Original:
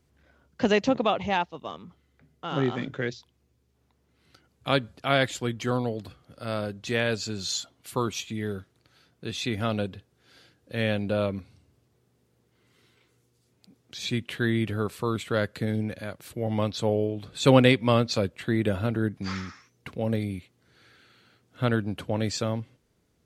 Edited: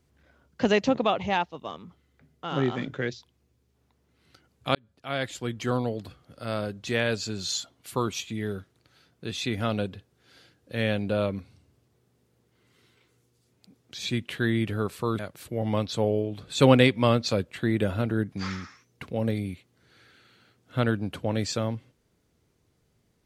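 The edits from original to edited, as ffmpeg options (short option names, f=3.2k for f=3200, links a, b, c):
-filter_complex "[0:a]asplit=3[a][b][c];[a]atrim=end=4.75,asetpts=PTS-STARTPTS,afade=t=out:st=4.746:d=0.004:c=hsin[d];[b]atrim=start=4.75:end=15.192,asetpts=PTS-STARTPTS,afade=t=in:d=0.95[e];[c]atrim=start=16.038[f];[d][e]concat=n=2:v=0:a=1[g];[g][f]acrossfade=d=0.004:c1=hsin:c2=hsin"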